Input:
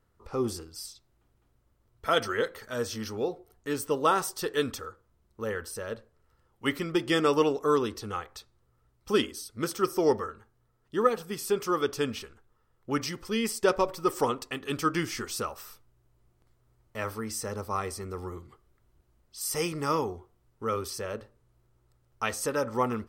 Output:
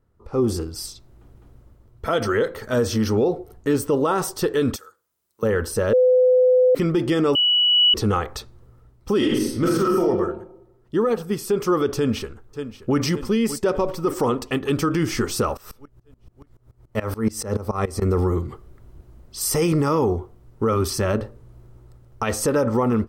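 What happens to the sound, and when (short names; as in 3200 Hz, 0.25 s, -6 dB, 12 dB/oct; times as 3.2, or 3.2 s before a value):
4.76–5.43 differentiator
5.93–6.75 bleep 506 Hz -18.5 dBFS
7.35–7.94 bleep 2940 Hz -21 dBFS
9.17–10.02 reverb throw, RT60 0.82 s, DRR -5.5 dB
11.95–12.99 echo throw 0.58 s, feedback 65%, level -16.5 dB
15.57–18.02 dB-ramp tremolo swelling 7 Hz, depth 22 dB
20.72–21.18 bell 480 Hz -14 dB 0.26 oct
whole clip: tilt shelf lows +5.5 dB, about 860 Hz; AGC gain up to 16 dB; limiter -12 dBFS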